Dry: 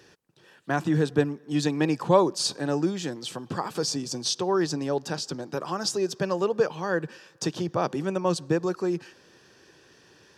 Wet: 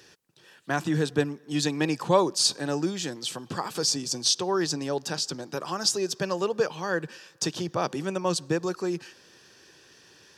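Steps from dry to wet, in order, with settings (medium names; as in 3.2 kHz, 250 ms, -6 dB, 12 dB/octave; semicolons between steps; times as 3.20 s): treble shelf 2 kHz +8 dB; trim -2.5 dB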